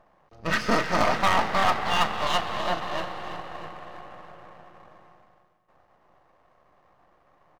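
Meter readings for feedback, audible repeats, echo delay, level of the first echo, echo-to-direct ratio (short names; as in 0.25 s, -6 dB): 51%, 3, 0.321 s, -18.0 dB, -16.5 dB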